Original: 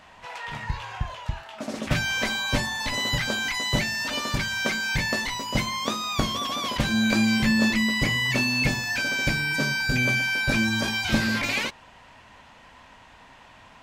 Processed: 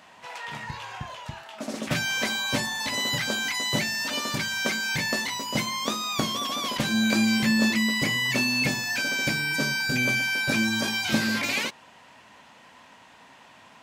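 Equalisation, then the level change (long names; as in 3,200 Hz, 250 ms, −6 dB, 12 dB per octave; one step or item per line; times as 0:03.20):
high-pass filter 180 Hz 12 dB per octave
low-shelf EQ 290 Hz +4.5 dB
high-shelf EQ 5,300 Hz +6.5 dB
−2.0 dB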